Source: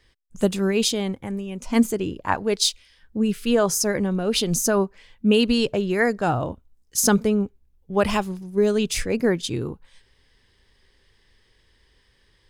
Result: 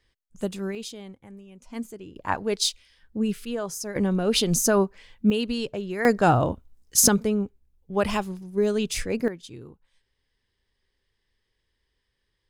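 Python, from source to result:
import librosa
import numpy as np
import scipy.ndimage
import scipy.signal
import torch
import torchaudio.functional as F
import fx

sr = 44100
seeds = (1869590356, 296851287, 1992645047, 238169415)

y = fx.gain(x, sr, db=fx.steps((0.0, -8.5), (0.75, -15.5), (2.16, -3.5), (3.45, -11.0), (3.96, 0.0), (5.3, -8.0), (6.05, 3.5), (7.08, -3.5), (9.28, -15.0)))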